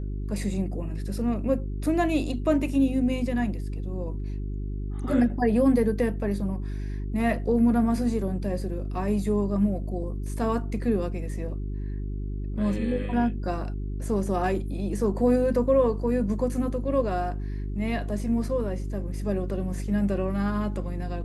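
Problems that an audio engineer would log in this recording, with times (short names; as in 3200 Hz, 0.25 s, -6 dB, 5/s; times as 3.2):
hum 50 Hz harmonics 8 -31 dBFS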